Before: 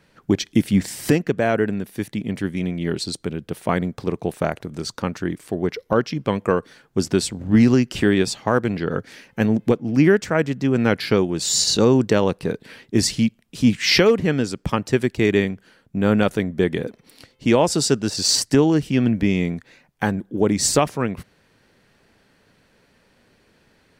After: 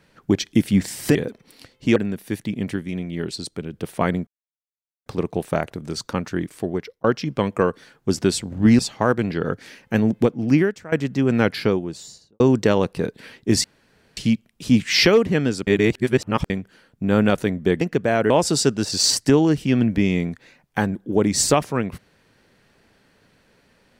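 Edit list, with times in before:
0:01.15–0:01.64: swap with 0:16.74–0:17.55
0:02.44–0:03.41: clip gain −3.5 dB
0:03.95: splice in silence 0.79 s
0:05.53–0:05.93: fade out
0:07.68–0:08.25: remove
0:09.99–0:10.38: fade out quadratic, to −16.5 dB
0:10.88–0:11.86: fade out and dull
0:13.10: splice in room tone 0.53 s
0:14.60–0:15.43: reverse

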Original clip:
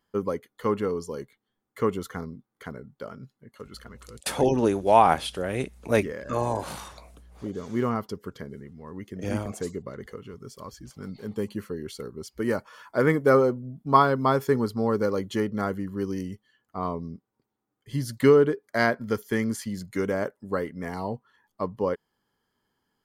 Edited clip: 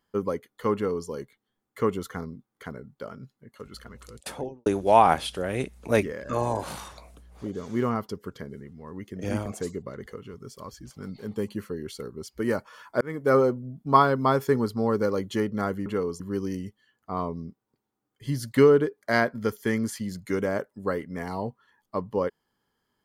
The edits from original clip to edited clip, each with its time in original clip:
0:00.74–0:01.08: duplicate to 0:15.86
0:04.02–0:04.66: fade out and dull
0:13.01–0:13.40: fade in

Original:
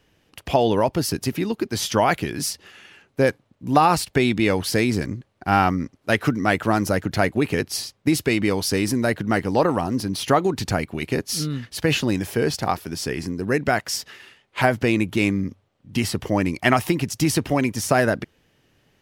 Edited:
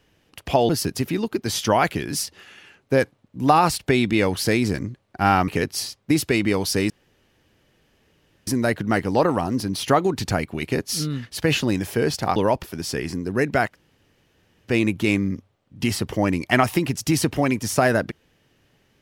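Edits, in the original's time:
0:00.69–0:00.96: move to 0:12.76
0:05.75–0:07.45: remove
0:08.87: splice in room tone 1.57 s
0:13.84–0:14.82: fill with room tone, crossfade 0.10 s

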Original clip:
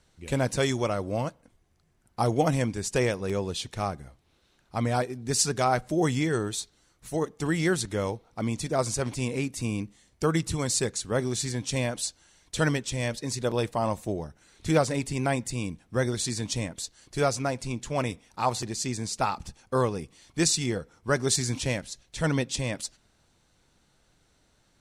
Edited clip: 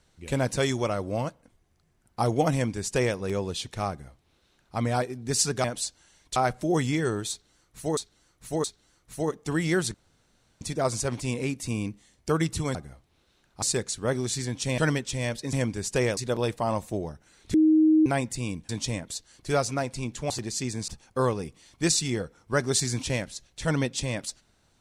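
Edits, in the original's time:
0:02.53–0:03.17: duplicate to 0:13.32
0:03.90–0:04.77: duplicate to 0:10.69
0:06.58–0:07.25: repeat, 3 plays
0:07.88–0:08.55: fill with room tone
0:11.85–0:12.57: move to 0:05.64
0:14.69–0:15.21: beep over 313 Hz −15.5 dBFS
0:15.84–0:16.37: remove
0:17.98–0:18.54: remove
0:19.12–0:19.44: remove

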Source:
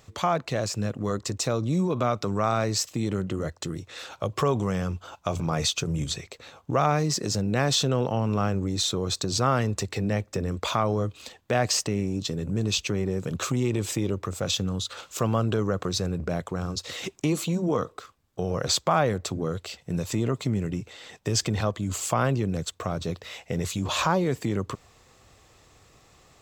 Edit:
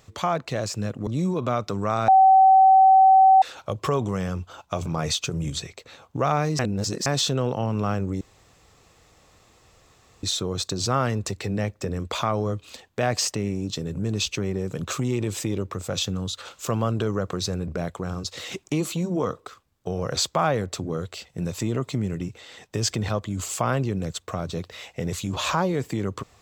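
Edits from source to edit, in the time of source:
0:01.07–0:01.61: remove
0:02.62–0:03.96: beep over 765 Hz −10.5 dBFS
0:07.13–0:07.60: reverse
0:08.75: splice in room tone 2.02 s

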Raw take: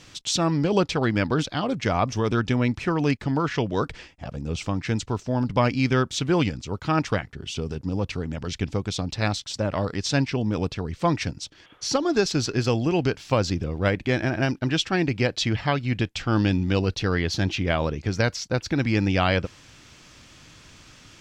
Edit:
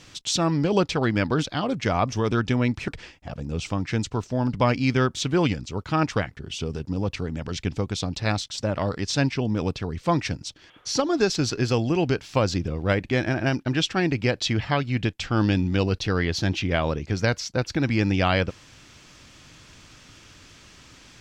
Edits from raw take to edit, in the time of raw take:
0:02.88–0:03.84: remove

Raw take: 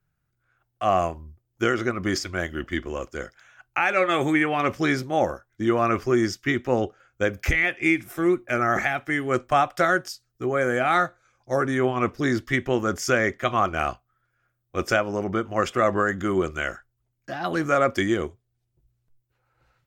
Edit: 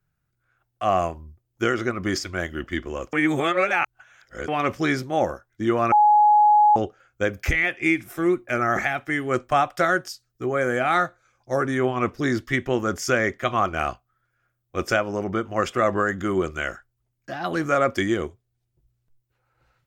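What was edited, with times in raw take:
0:03.13–0:04.48: reverse
0:05.92–0:06.76: beep over 839 Hz −12 dBFS

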